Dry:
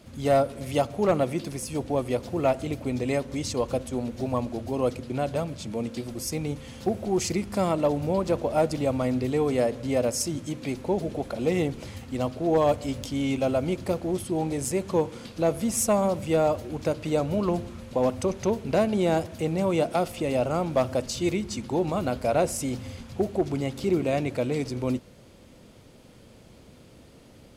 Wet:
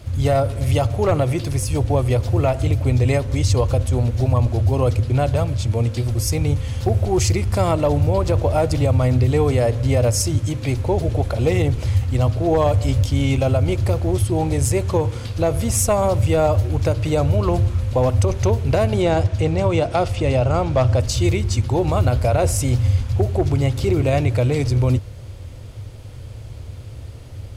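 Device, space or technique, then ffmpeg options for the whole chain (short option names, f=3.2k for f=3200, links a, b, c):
car stereo with a boomy subwoofer: -filter_complex "[0:a]asettb=1/sr,asplit=3[a][b][c];[a]atrim=end=19.024[d];[b]atrim=start=19.02:end=21,asetpts=PTS-STARTPTS,afade=t=in:d=0.004:c=qsin,afade=t=out:st=1.976:d=0.004:c=qsin,lowpass=6.9k[e];[c]atrim=start=20.996[f];[d][e]acrossfade=d=0.004:c1=hsin:c2=qsin[g];[g][f]acrossfade=d=0.004:c1=qsin:c2=hsin,lowshelf=f=140:t=q:w=3:g=11,alimiter=limit=-16dB:level=0:latency=1:release=57,volume=7.5dB"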